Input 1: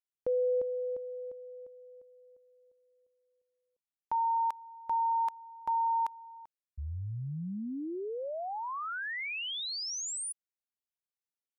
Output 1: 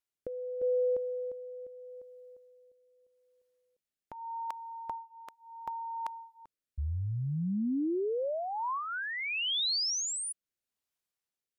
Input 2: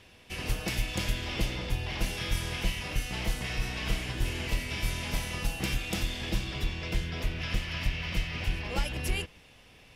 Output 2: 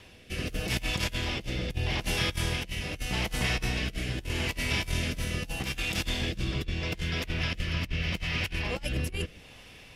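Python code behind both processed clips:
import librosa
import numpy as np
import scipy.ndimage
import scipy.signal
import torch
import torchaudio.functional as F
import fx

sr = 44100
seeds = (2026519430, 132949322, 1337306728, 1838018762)

y = fx.over_compress(x, sr, threshold_db=-33.0, ratio=-0.5)
y = fx.rotary(y, sr, hz=0.8)
y = y * 10.0 ** (4.5 / 20.0)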